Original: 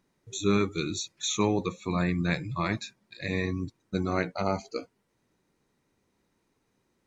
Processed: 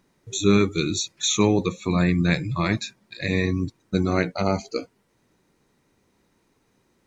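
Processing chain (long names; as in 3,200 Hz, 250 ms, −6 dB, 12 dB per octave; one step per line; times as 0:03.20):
dynamic equaliser 1,000 Hz, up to −5 dB, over −41 dBFS, Q 0.87
level +7.5 dB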